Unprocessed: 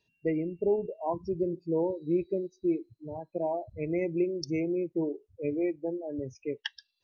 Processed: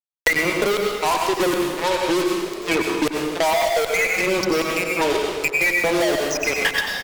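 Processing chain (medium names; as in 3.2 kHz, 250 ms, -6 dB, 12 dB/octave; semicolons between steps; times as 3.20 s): peaking EQ 3.3 kHz +3 dB 2.7 oct; reverse; compression 16:1, threshold -35 dBFS, peak gain reduction 14 dB; reverse; peak limiter -33.5 dBFS, peak gain reduction 10.5 dB; LFO high-pass saw down 1.3 Hz 430–3600 Hz; fuzz box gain 61 dB, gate -57 dBFS; frequency-shifting echo 259 ms, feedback 59%, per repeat +50 Hz, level -22.5 dB; on a send at -1 dB: reverberation RT60 0.85 s, pre-delay 83 ms; on the sum: three bands compressed up and down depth 100%; trim -4.5 dB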